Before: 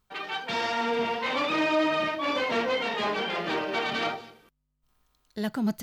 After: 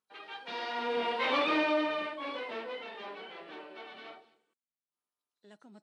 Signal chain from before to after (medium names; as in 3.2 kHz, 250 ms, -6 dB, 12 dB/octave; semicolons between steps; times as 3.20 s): knee-point frequency compression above 3.8 kHz 1.5:1; Doppler pass-by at 1.35 s, 9 m/s, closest 2.9 m; Chebyshev band-pass 320–9700 Hz, order 2